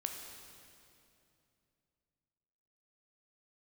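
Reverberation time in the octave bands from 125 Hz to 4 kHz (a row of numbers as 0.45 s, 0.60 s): 3.6 s, 3.2 s, 2.9 s, 2.5 s, 2.4 s, 2.3 s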